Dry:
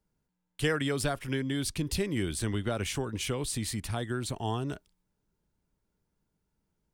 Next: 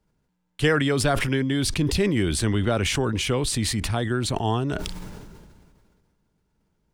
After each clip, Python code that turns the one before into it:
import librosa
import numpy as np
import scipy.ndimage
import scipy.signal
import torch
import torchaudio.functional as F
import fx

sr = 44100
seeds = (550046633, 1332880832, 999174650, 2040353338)

y = fx.high_shelf(x, sr, hz=8100.0, db=-11.0)
y = fx.sustainer(y, sr, db_per_s=30.0)
y = y * librosa.db_to_amplitude(7.5)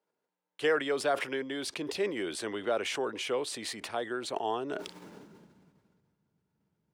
y = fx.high_shelf(x, sr, hz=5100.0, db=-7.5)
y = fx.filter_sweep_highpass(y, sr, from_hz=470.0, to_hz=120.0, start_s=4.52, end_s=6.07, q=1.4)
y = y * librosa.db_to_amplitude(-7.0)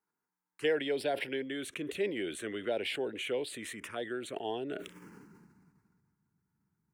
y = fx.env_phaser(x, sr, low_hz=560.0, high_hz=1200.0, full_db=-28.5)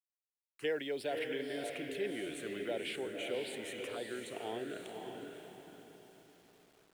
y = fx.echo_diffused(x, sr, ms=552, feedback_pct=40, wet_db=-4.0)
y = fx.quant_dither(y, sr, seeds[0], bits=10, dither='none')
y = y * librosa.db_to_amplitude(-5.5)